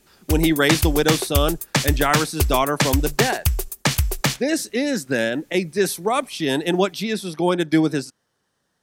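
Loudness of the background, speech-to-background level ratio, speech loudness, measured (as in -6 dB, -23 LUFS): -22.5 LUFS, 0.5 dB, -22.0 LUFS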